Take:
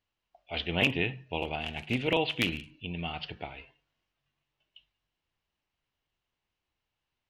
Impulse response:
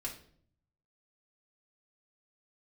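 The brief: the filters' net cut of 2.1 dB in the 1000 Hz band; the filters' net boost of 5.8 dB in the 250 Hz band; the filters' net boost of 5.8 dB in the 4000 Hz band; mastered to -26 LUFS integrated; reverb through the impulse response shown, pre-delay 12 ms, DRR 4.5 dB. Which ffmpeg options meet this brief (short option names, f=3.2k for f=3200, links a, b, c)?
-filter_complex "[0:a]equalizer=f=250:t=o:g=7.5,equalizer=f=1k:t=o:g=-4,equalizer=f=4k:t=o:g=9,asplit=2[a][b];[1:a]atrim=start_sample=2205,adelay=12[c];[b][c]afir=irnorm=-1:irlink=0,volume=-4dB[d];[a][d]amix=inputs=2:normalize=0"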